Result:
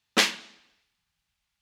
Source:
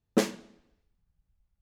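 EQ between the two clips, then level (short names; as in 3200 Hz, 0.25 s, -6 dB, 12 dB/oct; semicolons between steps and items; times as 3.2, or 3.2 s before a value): weighting filter D; dynamic EQ 6700 Hz, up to -4 dB, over -40 dBFS, Q 0.96; resonant low shelf 660 Hz -8 dB, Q 1.5; +5.5 dB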